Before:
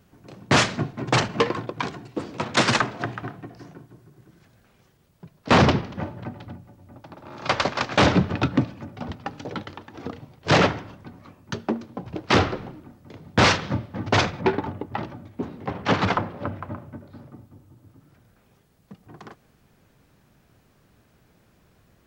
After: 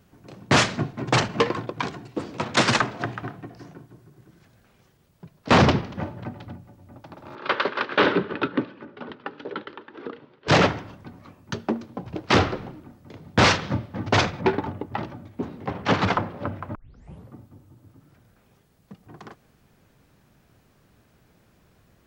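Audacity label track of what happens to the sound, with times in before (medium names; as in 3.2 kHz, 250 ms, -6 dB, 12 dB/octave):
7.350000	10.480000	cabinet simulation 300–3700 Hz, peaks and dips at 400 Hz +7 dB, 720 Hz -10 dB, 1.5 kHz +4 dB, 2.3 kHz -3 dB
16.750000	16.750000	tape start 0.59 s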